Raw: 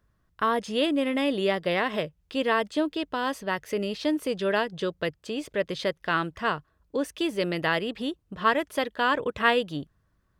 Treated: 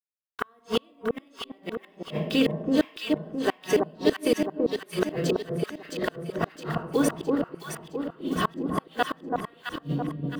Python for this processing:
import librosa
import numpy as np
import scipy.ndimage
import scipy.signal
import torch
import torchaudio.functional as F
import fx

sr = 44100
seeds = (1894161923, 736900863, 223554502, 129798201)

p1 = fx.spec_quant(x, sr, step_db=15)
p2 = fx.highpass(p1, sr, hz=49.0, slope=6)
p3 = fx.hum_notches(p2, sr, base_hz=60, count=2)
p4 = fx.over_compress(p3, sr, threshold_db=-30.0, ratio=-0.5)
p5 = p3 + (p4 * librosa.db_to_amplitude(-2.0))
p6 = fx.quant_dither(p5, sr, seeds[0], bits=8, dither='none')
p7 = fx.room_shoebox(p6, sr, seeds[1], volume_m3=3500.0, walls='furnished', distance_m=3.5)
p8 = fx.gate_flip(p7, sr, shuts_db=-13.0, range_db=-40)
p9 = fx.echo_alternate(p8, sr, ms=332, hz=1100.0, feedback_pct=69, wet_db=-2.0)
y = p9 * librosa.db_to_amplitude(2.0)